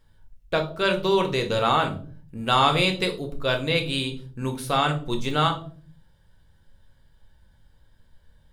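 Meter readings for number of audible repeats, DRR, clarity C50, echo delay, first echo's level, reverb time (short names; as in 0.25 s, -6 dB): none, 3.5 dB, 12.5 dB, none, none, 0.45 s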